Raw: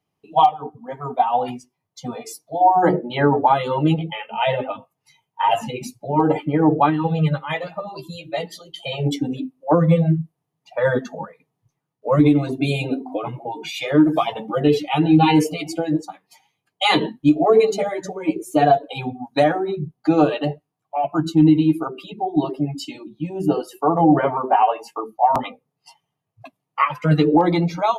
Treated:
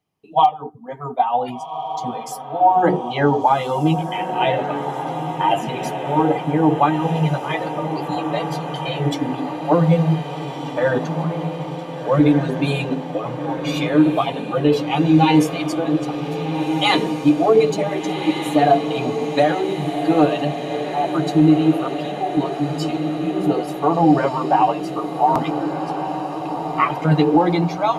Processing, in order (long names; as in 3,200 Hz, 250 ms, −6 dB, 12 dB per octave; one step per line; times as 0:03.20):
feedback delay with all-pass diffusion 1,533 ms, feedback 69%, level −8 dB